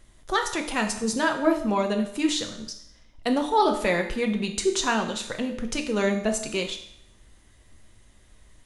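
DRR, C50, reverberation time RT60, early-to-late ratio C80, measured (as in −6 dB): 4.0 dB, 9.0 dB, 0.75 s, 12.0 dB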